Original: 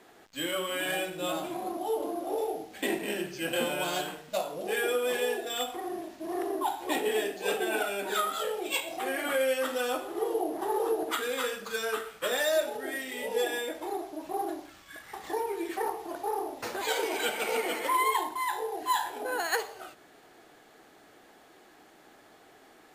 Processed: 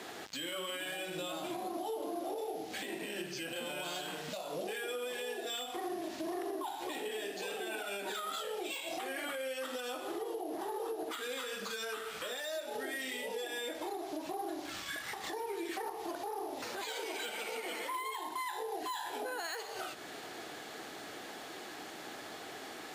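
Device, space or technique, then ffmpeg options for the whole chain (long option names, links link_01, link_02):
broadcast voice chain: -af "highpass=75,deesser=0.55,acompressor=threshold=-41dB:ratio=4,equalizer=frequency=4400:width_type=o:width=1.9:gain=5.5,alimiter=level_in=15dB:limit=-24dB:level=0:latency=1:release=247,volume=-15dB,volume=9dB"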